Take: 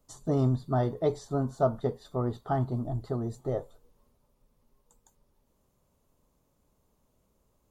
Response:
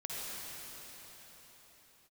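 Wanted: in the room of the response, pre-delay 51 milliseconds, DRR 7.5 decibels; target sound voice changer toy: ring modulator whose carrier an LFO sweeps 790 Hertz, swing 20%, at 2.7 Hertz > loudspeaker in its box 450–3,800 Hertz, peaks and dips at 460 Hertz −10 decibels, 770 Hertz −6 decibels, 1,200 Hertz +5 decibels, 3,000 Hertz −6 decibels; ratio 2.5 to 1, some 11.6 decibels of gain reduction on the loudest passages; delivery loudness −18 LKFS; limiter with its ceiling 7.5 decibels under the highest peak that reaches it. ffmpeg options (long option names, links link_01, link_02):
-filter_complex "[0:a]acompressor=threshold=-38dB:ratio=2.5,alimiter=level_in=8dB:limit=-24dB:level=0:latency=1,volume=-8dB,asplit=2[link_01][link_02];[1:a]atrim=start_sample=2205,adelay=51[link_03];[link_02][link_03]afir=irnorm=-1:irlink=0,volume=-10.5dB[link_04];[link_01][link_04]amix=inputs=2:normalize=0,aeval=exprs='val(0)*sin(2*PI*790*n/s+790*0.2/2.7*sin(2*PI*2.7*n/s))':channel_layout=same,highpass=450,equalizer=frequency=460:width_type=q:width=4:gain=-10,equalizer=frequency=770:width_type=q:width=4:gain=-6,equalizer=frequency=1200:width_type=q:width=4:gain=5,equalizer=frequency=3000:width_type=q:width=4:gain=-6,lowpass=frequency=3800:width=0.5412,lowpass=frequency=3800:width=1.3066,volume=27.5dB"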